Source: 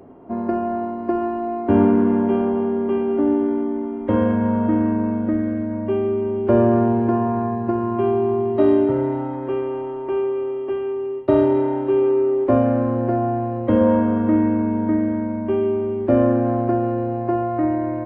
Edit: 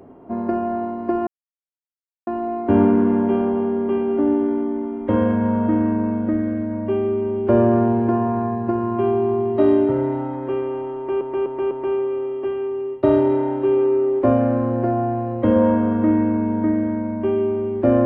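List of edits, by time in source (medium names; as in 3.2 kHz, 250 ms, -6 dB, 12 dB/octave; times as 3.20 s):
1.27 s: insert silence 1.00 s
9.96–10.21 s: loop, 4 plays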